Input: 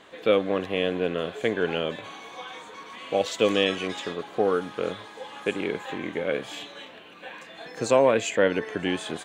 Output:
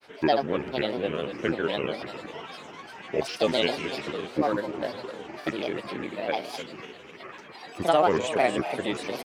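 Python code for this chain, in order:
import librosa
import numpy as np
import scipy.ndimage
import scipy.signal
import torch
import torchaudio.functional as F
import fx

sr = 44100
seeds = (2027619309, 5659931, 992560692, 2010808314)

y = fx.echo_split(x, sr, split_hz=310.0, low_ms=374, high_ms=270, feedback_pct=52, wet_db=-11)
y = fx.granulator(y, sr, seeds[0], grain_ms=100.0, per_s=20.0, spray_ms=37.0, spread_st=7)
y = y * 10.0 ** (-1.0 / 20.0)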